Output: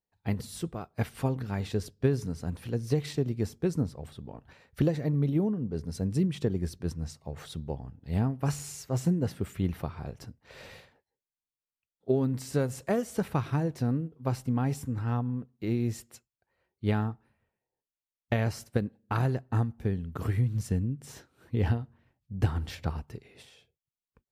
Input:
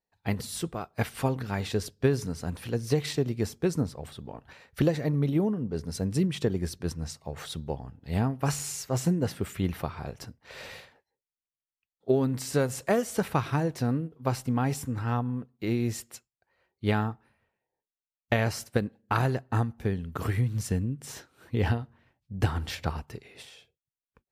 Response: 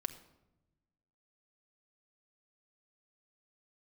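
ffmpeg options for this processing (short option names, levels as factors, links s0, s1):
-af "lowshelf=f=450:g=7,volume=0.473"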